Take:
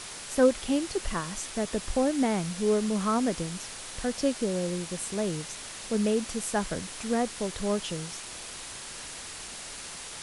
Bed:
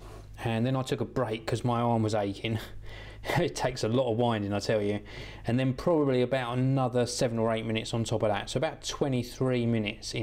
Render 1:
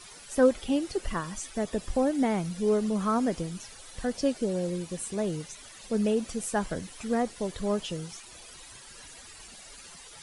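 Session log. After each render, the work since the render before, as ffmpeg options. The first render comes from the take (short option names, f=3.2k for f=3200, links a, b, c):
-af "afftdn=nr=13:nf=-41"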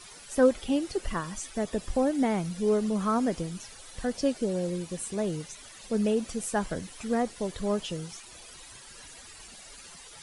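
-af anull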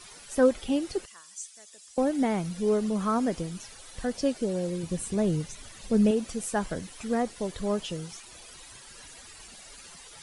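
-filter_complex "[0:a]asettb=1/sr,asplit=3[a][b][c];[a]atrim=end=1.054[d];[b]atrim=start=1.05:end=1.98,asetpts=PTS-STARTPTS,afade=t=in:d=0.004:c=qsin,afade=t=out:st=0.926:d=0.004:c=qsin,bandpass=f=7.3k:t=q:w=1.4[e];[c]atrim=start=1.976[f];[d][e]acrossfade=d=0.004:c1=hsin:c2=qsin[g];[g][f]acrossfade=d=0.004:c1=qsin:c2=hsin,asettb=1/sr,asplit=3[h][i][j];[h]atrim=end=4.834[k];[i]atrim=start=4.83:end=6.11,asetpts=PTS-STARTPTS,afade=t=in:d=0.004:c=qsin,afade=t=out:st=1.276:d=0.004:c=qsin,lowshelf=f=220:g=11[l];[j]atrim=start=6.106[m];[k][l]acrossfade=d=0.004:c1=hsin:c2=qsin[n];[n][m]acrossfade=d=0.004:c1=qsin:c2=hsin"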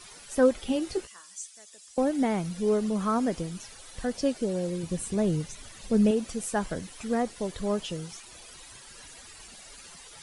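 -filter_complex "[0:a]asettb=1/sr,asplit=3[a][b][c];[a]atrim=end=0.654[d];[b]atrim=start=0.65:end=1.39,asetpts=PTS-STARTPTS,afade=t=in:d=0.004:c=qsin,afade=t=out:st=0.736:d=0.004:c=qsin,asplit=2[e][f];[f]adelay=16,volume=-7dB[g];[e][g]amix=inputs=2:normalize=0,atrim=end_sample=32634[h];[c]atrim=start=1.386[i];[d][h]acrossfade=d=0.004:c1=hsin:c2=qsin[j];[j][i]acrossfade=d=0.004:c1=qsin:c2=hsin"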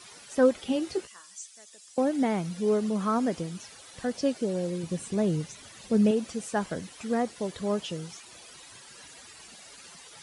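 -filter_complex "[0:a]acrossover=split=8100[a][b];[b]acompressor=threshold=-55dB:ratio=4:attack=1:release=60[c];[a][c]amix=inputs=2:normalize=0,highpass=100"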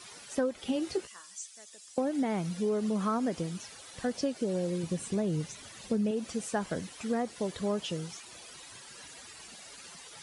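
-af "acompressor=threshold=-26dB:ratio=10"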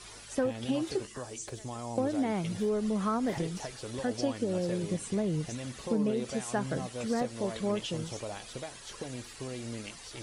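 -filter_complex "[1:a]volume=-12.5dB[a];[0:a][a]amix=inputs=2:normalize=0"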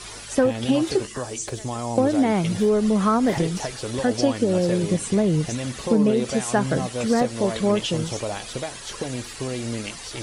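-af "volume=10.5dB"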